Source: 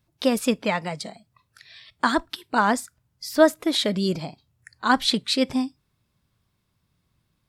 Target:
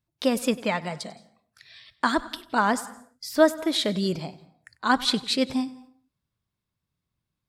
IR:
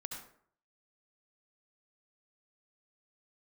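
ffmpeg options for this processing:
-filter_complex "[0:a]agate=range=0.316:threshold=0.00224:ratio=16:detection=peak,asplit=2[s0][s1];[1:a]atrim=start_sample=2205,afade=t=out:st=0.38:d=0.01,atrim=end_sample=17199,adelay=96[s2];[s1][s2]afir=irnorm=-1:irlink=0,volume=0.168[s3];[s0][s3]amix=inputs=2:normalize=0,volume=0.794"

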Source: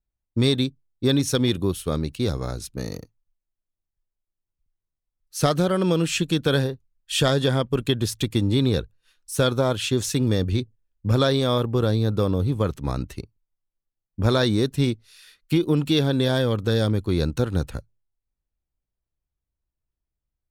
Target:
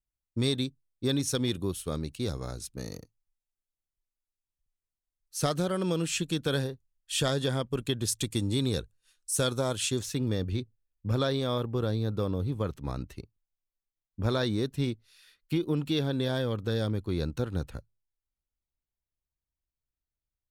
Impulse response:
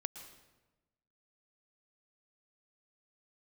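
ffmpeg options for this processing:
-af "asetnsamples=n=441:p=0,asendcmd='8.08 equalizer g 12.5;9.99 equalizer g -2.5',equalizer=f=8400:w=0.82:g=5.5,volume=0.398"

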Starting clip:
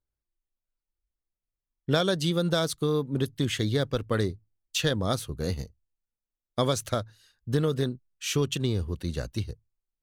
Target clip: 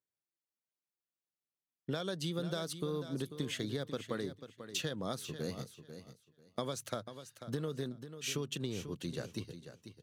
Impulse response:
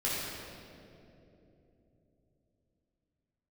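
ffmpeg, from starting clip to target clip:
-filter_complex "[0:a]highpass=f=130:w=0.5412,highpass=f=130:w=1.3066,acompressor=threshold=0.0398:ratio=6,asplit=2[s0][s1];[s1]aecho=0:1:492|984|1476:0.282|0.0535|0.0102[s2];[s0][s2]amix=inputs=2:normalize=0,volume=0.531"

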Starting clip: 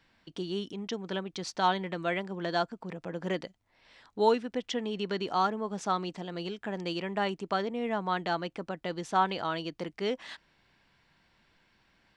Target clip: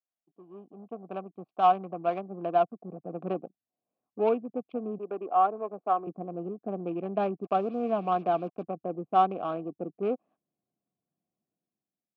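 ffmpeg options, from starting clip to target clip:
-filter_complex "[0:a]afwtdn=0.0112,adynamicsmooth=sensitivity=1.5:basefreq=550,asettb=1/sr,asplit=3[s0][s1][s2];[s0]atrim=end=4.984[s3];[s1]atrim=start=4.98:end=6.07,asetpts=PTS-STARTPTS,afade=t=in:d=0.004:c=qsin,afade=t=out:st=1.086:d=0.004:c=qsin,acrossover=split=320 2100:gain=0.126 1 0.2[s4][s5][s6];[s4][s5][s6]amix=inputs=3:normalize=0[s7];[s2]atrim=start=6.066[s8];[s3][s7]acrossfade=d=0.004:c1=hsin:c2=qsin[s9];[s9][s8]acrossfade=d=0.004:c1=qsin:c2=hsin,dynaudnorm=f=150:g=9:m=4.47,asettb=1/sr,asplit=3[s10][s11][s12];[s10]atrim=end=7.444[s13];[s11]atrim=start=7.44:end=8.63,asetpts=PTS-STARTPTS,afade=t=in:d=0.004:c=qsin,afade=t=out:st=1.186:d=0.004:c=qsin,acrusher=bits=5:mix=0:aa=0.5[s14];[s12]atrim=start=8.626[s15];[s13][s14]acrossfade=d=0.004:c1=hsin:c2=qsin[s16];[s16][s15]acrossfade=d=0.004:c1=qsin:c2=hsin,asplit=3[s17][s18][s19];[s17]bandpass=f=730:t=q:w=8,volume=1[s20];[s18]bandpass=f=1090:t=q:w=8,volume=0.501[s21];[s19]bandpass=f=2440:t=q:w=8,volume=0.355[s22];[s20][s21][s22]amix=inputs=3:normalize=0,asubboost=boost=10:cutoff=250,highpass=170,lowpass=5300,volume=1.19"

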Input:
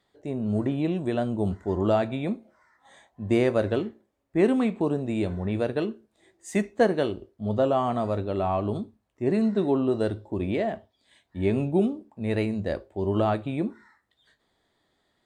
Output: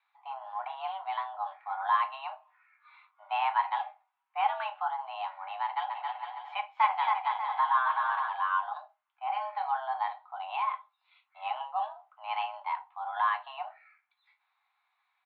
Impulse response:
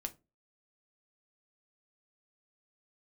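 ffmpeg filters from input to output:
-filter_complex "[0:a]asplit=3[s0][s1][s2];[s0]afade=t=out:st=5.89:d=0.02[s3];[s1]aecho=1:1:270|459|591.3|683.9|748.7:0.631|0.398|0.251|0.158|0.1,afade=t=in:st=5.89:d=0.02,afade=t=out:st=8.27:d=0.02[s4];[s2]afade=t=in:st=8.27:d=0.02[s5];[s3][s4][s5]amix=inputs=3:normalize=0[s6];[1:a]atrim=start_sample=2205,atrim=end_sample=3969,asetrate=48510,aresample=44100[s7];[s6][s7]afir=irnorm=-1:irlink=0,highpass=f=420:t=q:w=0.5412,highpass=f=420:t=q:w=1.307,lowpass=f=3100:t=q:w=0.5176,lowpass=f=3100:t=q:w=0.7071,lowpass=f=3100:t=q:w=1.932,afreqshift=400"

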